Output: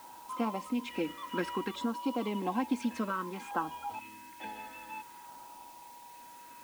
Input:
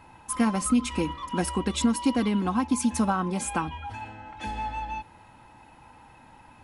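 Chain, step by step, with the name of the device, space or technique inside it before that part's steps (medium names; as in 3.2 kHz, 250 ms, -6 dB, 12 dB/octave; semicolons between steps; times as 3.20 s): 3.99–4.40 s: Chebyshev band-stop 310–1500 Hz, order 2; shortwave radio (band-pass 340–2800 Hz; tremolo 0.75 Hz, depth 40%; LFO notch saw down 0.57 Hz 560–2500 Hz; whistle 960 Hz -50 dBFS; white noise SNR 21 dB)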